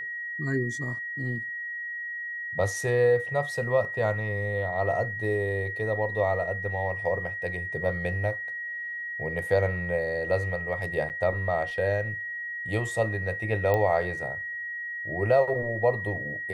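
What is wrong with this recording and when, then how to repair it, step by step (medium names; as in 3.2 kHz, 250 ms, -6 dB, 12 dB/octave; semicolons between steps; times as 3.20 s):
whine 1.9 kHz -32 dBFS
11.09–11.10 s: dropout 9.2 ms
13.74 s: pop -14 dBFS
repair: de-click; band-stop 1.9 kHz, Q 30; interpolate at 11.09 s, 9.2 ms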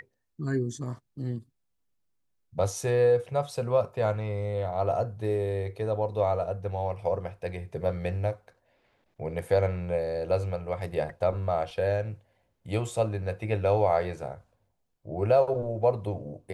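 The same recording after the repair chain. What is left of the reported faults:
nothing left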